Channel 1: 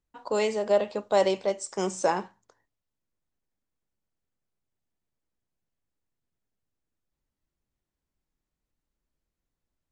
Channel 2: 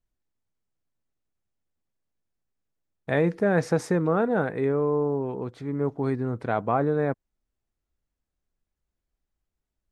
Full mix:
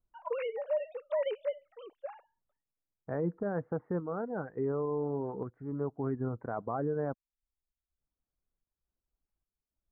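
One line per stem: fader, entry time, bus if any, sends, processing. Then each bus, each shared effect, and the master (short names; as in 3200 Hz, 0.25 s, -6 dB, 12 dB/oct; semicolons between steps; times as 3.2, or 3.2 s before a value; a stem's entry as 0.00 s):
-4.0 dB, 0.00 s, no send, sine-wave speech; gate with hold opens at -58 dBFS; auto duck -21 dB, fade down 1.90 s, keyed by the second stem
-3.5 dB, 0.00 s, no send, reverb removal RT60 0.69 s; steep low-pass 1500 Hz 36 dB/oct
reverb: off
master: vocal rider within 4 dB 0.5 s; random-step tremolo 3.5 Hz; limiter -24 dBFS, peak gain reduction 7 dB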